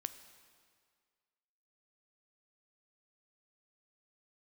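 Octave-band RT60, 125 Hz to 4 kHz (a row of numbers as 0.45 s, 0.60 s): 1.7 s, 1.8 s, 1.9 s, 1.9 s, 1.8 s, 1.7 s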